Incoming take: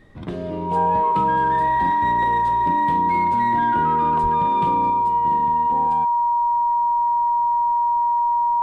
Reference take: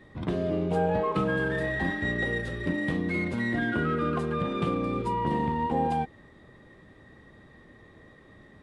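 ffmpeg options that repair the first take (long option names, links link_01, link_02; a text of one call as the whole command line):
ffmpeg -i in.wav -filter_complex "[0:a]bandreject=frequency=950:width=30,asplit=3[link_01][link_02][link_03];[link_01]afade=type=out:start_time=4.22:duration=0.02[link_04];[link_02]highpass=frequency=140:width=0.5412,highpass=frequency=140:width=1.3066,afade=type=in:start_time=4.22:duration=0.02,afade=type=out:start_time=4.34:duration=0.02[link_05];[link_03]afade=type=in:start_time=4.34:duration=0.02[link_06];[link_04][link_05][link_06]amix=inputs=3:normalize=0,agate=range=-21dB:threshold=-11dB,asetnsamples=nb_out_samples=441:pad=0,asendcmd='4.9 volume volume 5dB',volume=0dB" out.wav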